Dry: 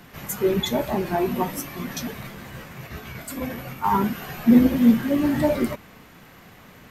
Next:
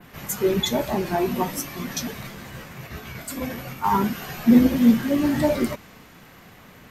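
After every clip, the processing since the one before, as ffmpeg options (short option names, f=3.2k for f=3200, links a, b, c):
-af "adynamicequalizer=threshold=0.00398:dfrequency=5800:dqfactor=0.87:tfrequency=5800:tqfactor=0.87:attack=5:release=100:ratio=0.375:range=2.5:mode=boostabove:tftype=bell"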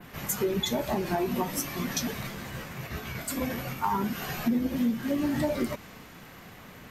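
-af "acompressor=threshold=-25dB:ratio=5"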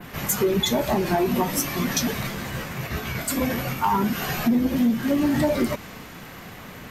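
-af "asoftclip=type=tanh:threshold=-19.5dB,volume=7.5dB"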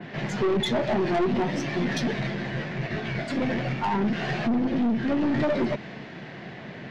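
-af "highpass=120,equalizer=f=140:t=q:w=4:g=9,equalizer=f=210:t=q:w=4:g=5,equalizer=f=360:t=q:w=4:g=8,equalizer=f=650:t=q:w=4:g=7,equalizer=f=1.2k:t=q:w=4:g=-7,equalizer=f=1.8k:t=q:w=4:g=6,lowpass=f=4.5k:w=0.5412,lowpass=f=4.5k:w=1.3066,aeval=exprs='(tanh(8.91*val(0)+0.3)-tanh(0.3))/8.91':c=same,volume=-1.5dB"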